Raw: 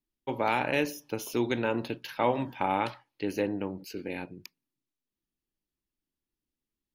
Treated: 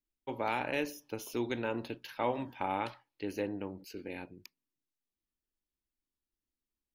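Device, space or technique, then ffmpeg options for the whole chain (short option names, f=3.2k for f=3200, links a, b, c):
low shelf boost with a cut just above: -af "lowshelf=f=110:g=5,equalizer=f=150:t=o:w=0.68:g=-6,volume=-6dB"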